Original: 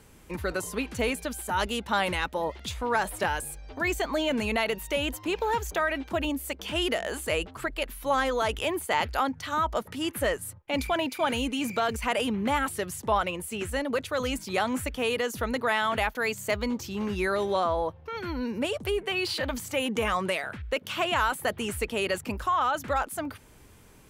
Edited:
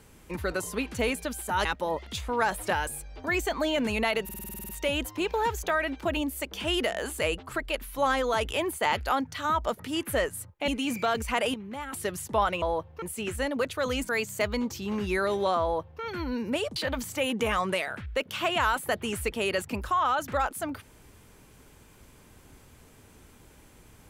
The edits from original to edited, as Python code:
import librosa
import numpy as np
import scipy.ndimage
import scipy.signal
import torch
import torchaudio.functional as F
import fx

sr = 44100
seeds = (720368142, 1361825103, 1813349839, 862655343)

y = fx.edit(x, sr, fx.cut(start_s=1.65, length_s=0.53),
    fx.stutter(start_s=4.77, slice_s=0.05, count=10),
    fx.cut(start_s=10.76, length_s=0.66),
    fx.clip_gain(start_s=12.28, length_s=0.39, db=-11.0),
    fx.cut(start_s=14.43, length_s=1.75),
    fx.duplicate(start_s=17.71, length_s=0.4, to_s=13.36),
    fx.cut(start_s=18.85, length_s=0.47), tone=tone)